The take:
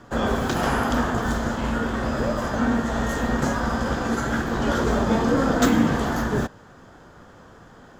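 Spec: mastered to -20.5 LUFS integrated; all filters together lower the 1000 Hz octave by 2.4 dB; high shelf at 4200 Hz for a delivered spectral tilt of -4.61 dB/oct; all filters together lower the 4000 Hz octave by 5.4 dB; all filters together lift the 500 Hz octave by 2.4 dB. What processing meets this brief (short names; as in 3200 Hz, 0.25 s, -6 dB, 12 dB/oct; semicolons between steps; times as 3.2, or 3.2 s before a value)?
bell 500 Hz +4 dB; bell 1000 Hz -4 dB; bell 4000 Hz -3 dB; high shelf 4200 Hz -7 dB; gain +2.5 dB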